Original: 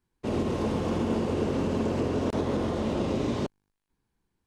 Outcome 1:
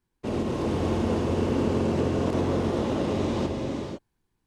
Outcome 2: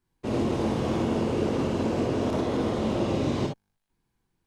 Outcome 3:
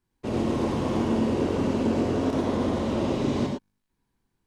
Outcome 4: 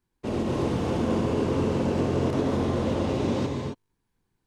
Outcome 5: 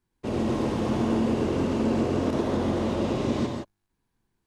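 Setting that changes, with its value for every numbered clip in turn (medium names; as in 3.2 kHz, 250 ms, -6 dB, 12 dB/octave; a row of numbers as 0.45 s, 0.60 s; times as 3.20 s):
gated-style reverb, gate: 530 ms, 80 ms, 130 ms, 290 ms, 190 ms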